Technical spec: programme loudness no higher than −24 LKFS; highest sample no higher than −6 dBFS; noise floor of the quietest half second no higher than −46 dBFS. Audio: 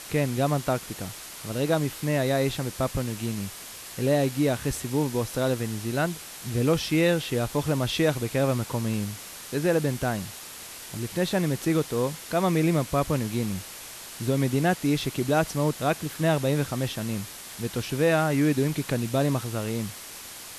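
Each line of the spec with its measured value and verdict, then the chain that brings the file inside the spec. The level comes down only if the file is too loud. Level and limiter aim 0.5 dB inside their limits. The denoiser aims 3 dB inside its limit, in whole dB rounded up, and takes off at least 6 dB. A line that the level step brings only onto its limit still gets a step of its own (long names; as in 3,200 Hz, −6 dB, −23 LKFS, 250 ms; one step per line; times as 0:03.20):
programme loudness −26.5 LKFS: in spec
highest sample −10.0 dBFS: in spec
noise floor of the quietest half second −41 dBFS: out of spec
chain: broadband denoise 8 dB, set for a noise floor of −41 dBFS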